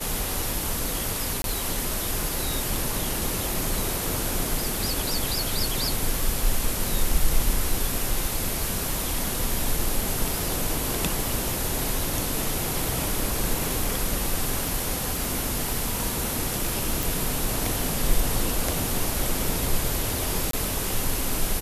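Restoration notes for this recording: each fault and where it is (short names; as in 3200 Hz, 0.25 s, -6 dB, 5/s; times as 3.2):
1.42–1.44 gap 22 ms
15.25 pop
17.03 pop
20.51–20.53 gap 23 ms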